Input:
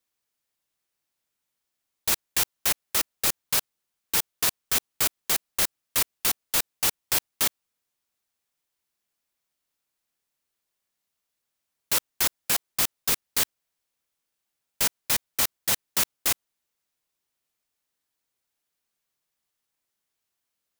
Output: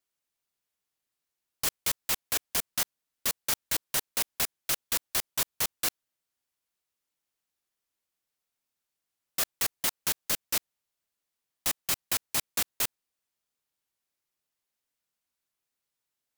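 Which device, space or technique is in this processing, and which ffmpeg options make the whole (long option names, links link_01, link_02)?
nightcore: -af "asetrate=56007,aresample=44100,volume=-3dB"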